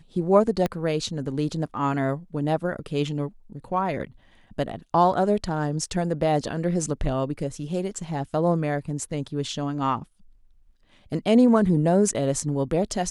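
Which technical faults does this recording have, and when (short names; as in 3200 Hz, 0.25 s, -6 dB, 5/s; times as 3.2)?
0.66 pop -12 dBFS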